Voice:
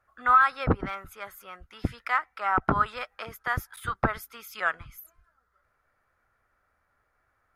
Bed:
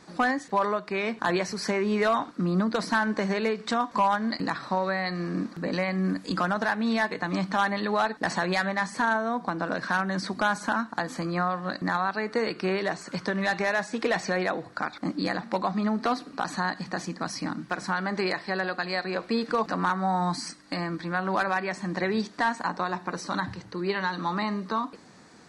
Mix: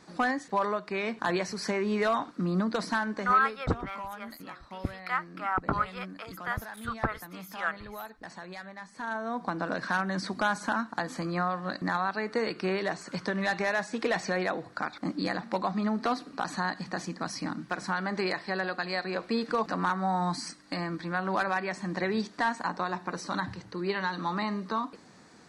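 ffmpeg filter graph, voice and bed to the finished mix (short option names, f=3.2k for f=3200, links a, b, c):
-filter_complex "[0:a]adelay=3000,volume=-4.5dB[a];[1:a]volume=11dB,afade=t=out:st=2.82:d=0.79:silence=0.211349,afade=t=in:st=8.93:d=0.55:silence=0.199526[b];[a][b]amix=inputs=2:normalize=0"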